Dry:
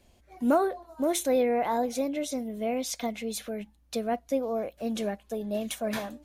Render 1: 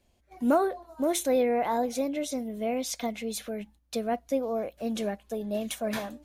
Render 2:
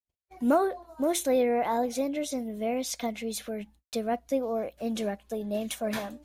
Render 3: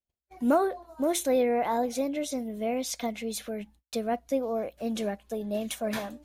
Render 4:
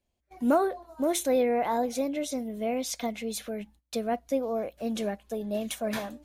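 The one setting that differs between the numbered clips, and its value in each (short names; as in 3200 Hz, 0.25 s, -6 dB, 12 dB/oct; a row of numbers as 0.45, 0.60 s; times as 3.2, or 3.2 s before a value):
gate, range: -7, -51, -37, -19 dB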